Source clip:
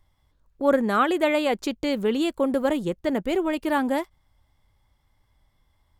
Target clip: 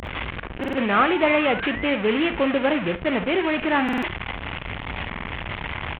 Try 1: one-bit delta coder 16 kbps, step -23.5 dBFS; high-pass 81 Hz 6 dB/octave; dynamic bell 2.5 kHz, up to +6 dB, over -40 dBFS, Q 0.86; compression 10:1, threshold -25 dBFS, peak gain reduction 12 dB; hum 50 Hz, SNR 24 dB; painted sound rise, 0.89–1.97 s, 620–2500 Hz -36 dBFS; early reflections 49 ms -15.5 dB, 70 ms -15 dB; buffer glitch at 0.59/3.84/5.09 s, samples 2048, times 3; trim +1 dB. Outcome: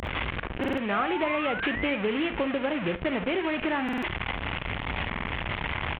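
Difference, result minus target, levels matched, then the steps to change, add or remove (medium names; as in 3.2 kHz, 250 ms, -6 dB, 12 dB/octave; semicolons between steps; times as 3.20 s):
compression: peak gain reduction +12 dB
remove: compression 10:1, threshold -25 dBFS, peak gain reduction 12 dB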